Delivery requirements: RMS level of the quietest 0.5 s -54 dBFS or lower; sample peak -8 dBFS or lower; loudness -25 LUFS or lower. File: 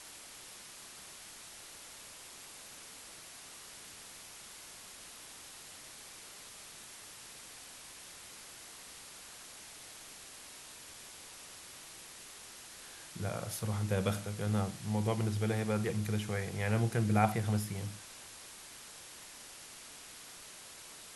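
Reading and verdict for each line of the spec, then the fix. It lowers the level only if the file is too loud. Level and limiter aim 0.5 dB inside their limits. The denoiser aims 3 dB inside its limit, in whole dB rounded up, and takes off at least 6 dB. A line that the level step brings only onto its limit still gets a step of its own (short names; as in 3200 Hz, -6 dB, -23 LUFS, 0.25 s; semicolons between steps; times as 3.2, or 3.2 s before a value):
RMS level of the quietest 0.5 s -51 dBFS: fail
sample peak -13.0 dBFS: OK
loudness -39.5 LUFS: OK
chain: denoiser 6 dB, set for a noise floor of -51 dBFS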